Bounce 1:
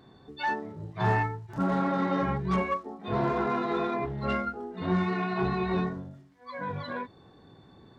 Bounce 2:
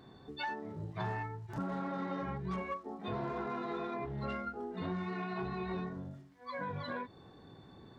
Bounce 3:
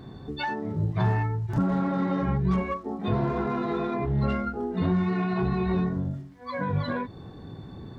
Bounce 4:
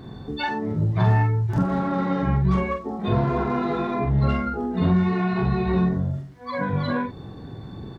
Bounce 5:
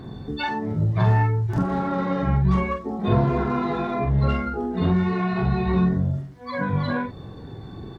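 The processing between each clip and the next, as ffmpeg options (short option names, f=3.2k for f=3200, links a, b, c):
-af "acompressor=threshold=-35dB:ratio=5,volume=-1dB"
-af "lowshelf=f=260:g=11.5,volume=7dB"
-filter_complex "[0:a]asplit=2[a][b];[b]adelay=45,volume=-5dB[c];[a][c]amix=inputs=2:normalize=0,volume=3dB"
-af "aphaser=in_gain=1:out_gain=1:delay=2.8:decay=0.23:speed=0.32:type=triangular"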